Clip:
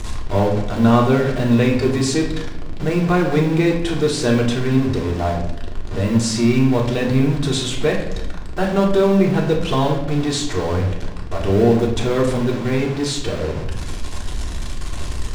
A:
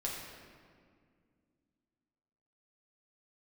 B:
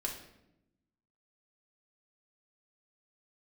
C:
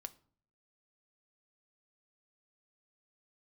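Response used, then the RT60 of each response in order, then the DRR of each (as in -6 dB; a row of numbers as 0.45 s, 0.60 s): B; 2.1 s, 0.85 s, 0.50 s; -4.0 dB, -1.0 dB, 10.0 dB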